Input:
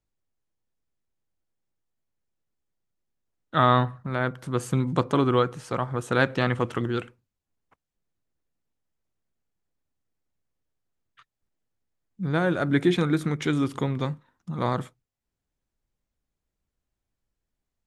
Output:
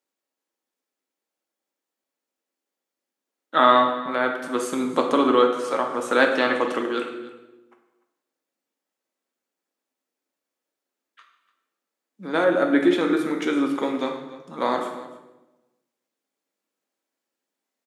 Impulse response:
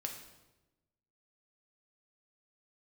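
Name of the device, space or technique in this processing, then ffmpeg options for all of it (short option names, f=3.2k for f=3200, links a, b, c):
bathroom: -filter_complex "[0:a]highpass=f=280:w=0.5412,highpass=f=280:w=1.3066[a];[1:a]atrim=start_sample=2205[b];[a][b]afir=irnorm=-1:irlink=0,asettb=1/sr,asplit=3[c][d][e];[c]atrim=end=12.444[f];[d]atrim=start=12.44:end=13.83,asetpts=PTS-STARTPTS,afade=t=in:d=0.004:c=qsin,afade=t=out:st=1.386:d=0.004:c=qsin,equalizer=f=6.4k:w=0.41:g=-6[g];[e]atrim=start=13.826[h];[f][g]acrossfade=d=0.004:c1=hsin:c2=qsin[i];[i][h]acrossfade=d=0.004:c1=qsin:c2=hsin,aecho=1:1:295:0.112,volume=6dB"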